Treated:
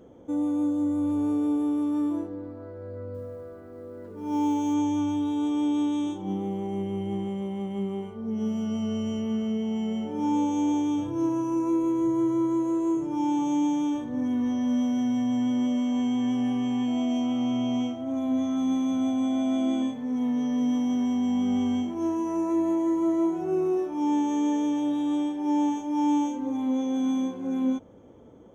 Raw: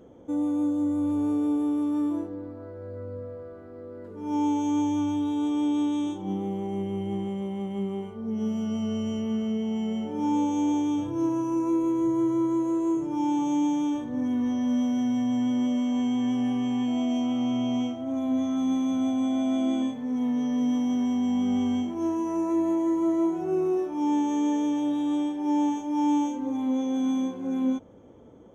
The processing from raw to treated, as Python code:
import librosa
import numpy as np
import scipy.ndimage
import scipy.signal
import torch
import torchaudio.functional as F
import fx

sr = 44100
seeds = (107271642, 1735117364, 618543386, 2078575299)

y = fx.quant_companded(x, sr, bits=8, at=(3.14, 4.74))